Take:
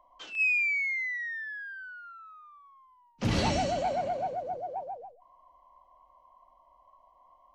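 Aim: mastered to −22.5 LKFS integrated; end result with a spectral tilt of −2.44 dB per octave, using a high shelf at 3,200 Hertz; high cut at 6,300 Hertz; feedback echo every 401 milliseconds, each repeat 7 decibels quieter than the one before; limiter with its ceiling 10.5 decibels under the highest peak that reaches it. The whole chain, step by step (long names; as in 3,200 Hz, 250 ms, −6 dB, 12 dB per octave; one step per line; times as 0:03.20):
low-pass filter 6,300 Hz
high-shelf EQ 3,200 Hz +3.5 dB
brickwall limiter −24 dBFS
repeating echo 401 ms, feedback 45%, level −7 dB
level +8 dB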